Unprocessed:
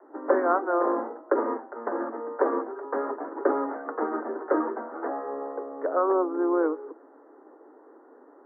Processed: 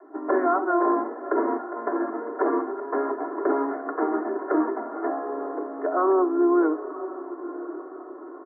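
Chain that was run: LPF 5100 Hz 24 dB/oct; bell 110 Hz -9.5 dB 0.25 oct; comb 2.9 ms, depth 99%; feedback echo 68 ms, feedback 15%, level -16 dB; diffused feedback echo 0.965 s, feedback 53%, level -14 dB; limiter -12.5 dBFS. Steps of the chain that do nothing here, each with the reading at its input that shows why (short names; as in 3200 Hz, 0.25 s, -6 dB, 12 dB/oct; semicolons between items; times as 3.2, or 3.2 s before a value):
LPF 5100 Hz: input band ends at 1900 Hz; bell 110 Hz: input band starts at 200 Hz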